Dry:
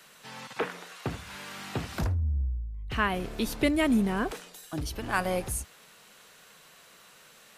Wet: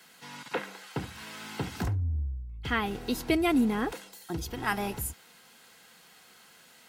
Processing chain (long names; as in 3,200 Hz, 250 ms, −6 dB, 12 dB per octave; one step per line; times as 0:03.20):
speed change +10%
notch comb filter 590 Hz